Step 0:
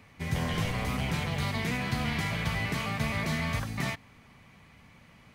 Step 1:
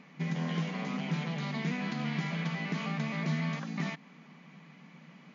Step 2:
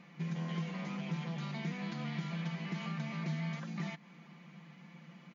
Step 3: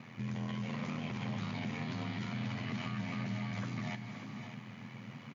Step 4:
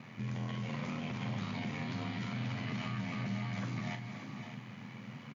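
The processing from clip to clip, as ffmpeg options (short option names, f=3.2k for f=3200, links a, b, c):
-af "acompressor=threshold=-35dB:ratio=2.5,afftfilt=real='re*between(b*sr/4096,150,7200)':imag='im*between(b*sr/4096,150,7200)':win_size=4096:overlap=0.75,bass=f=250:g=9,treble=f=4k:g=-3"
-af "aecho=1:1:5.8:0.65,acompressor=threshold=-39dB:ratio=1.5,volume=-3.5dB"
-filter_complex "[0:a]alimiter=level_in=14dB:limit=-24dB:level=0:latency=1:release=35,volume=-14dB,aeval=exprs='val(0)*sin(2*PI*42*n/s)':c=same,asplit=2[a][b];[b]aecho=0:1:289|517|593:0.237|0.299|0.316[c];[a][c]amix=inputs=2:normalize=0,volume=8.5dB"
-filter_complex "[0:a]asplit=2[a][b];[b]adelay=41,volume=-9dB[c];[a][c]amix=inputs=2:normalize=0"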